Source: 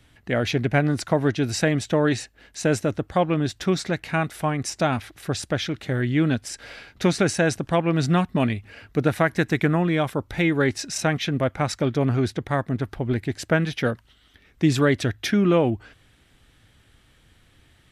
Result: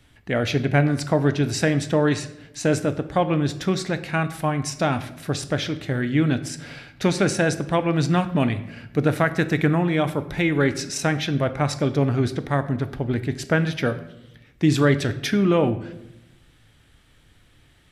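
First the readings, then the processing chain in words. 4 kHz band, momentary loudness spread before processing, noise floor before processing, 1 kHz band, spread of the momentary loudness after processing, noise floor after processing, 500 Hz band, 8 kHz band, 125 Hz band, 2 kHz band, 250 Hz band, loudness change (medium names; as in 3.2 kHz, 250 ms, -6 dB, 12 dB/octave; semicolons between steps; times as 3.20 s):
+0.5 dB, 6 LU, -59 dBFS, +0.5 dB, 7 LU, -56 dBFS, +0.5 dB, 0.0 dB, +1.5 dB, +0.5 dB, +1.0 dB, +1.0 dB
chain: simulated room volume 260 m³, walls mixed, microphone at 0.35 m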